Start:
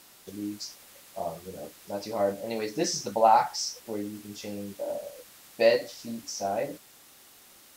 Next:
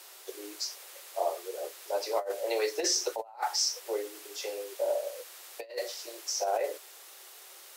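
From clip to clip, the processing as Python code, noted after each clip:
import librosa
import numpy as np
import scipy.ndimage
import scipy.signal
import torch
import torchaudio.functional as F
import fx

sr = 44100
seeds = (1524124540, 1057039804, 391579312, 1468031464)

y = scipy.signal.sosfilt(scipy.signal.butter(16, 350.0, 'highpass', fs=sr, output='sos'), x)
y = fx.over_compress(y, sr, threshold_db=-30.0, ratio=-0.5)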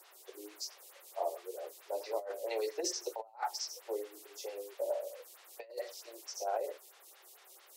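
y = fx.stagger_phaser(x, sr, hz=4.5)
y = y * librosa.db_to_amplitude(-4.0)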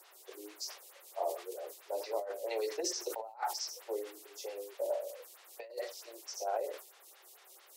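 y = fx.sustainer(x, sr, db_per_s=120.0)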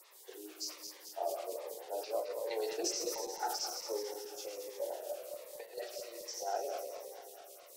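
y = fx.reverse_delay_fb(x, sr, ms=109, feedback_pct=77, wet_db=-7)
y = fx.notch_cascade(y, sr, direction='falling', hz=1.3)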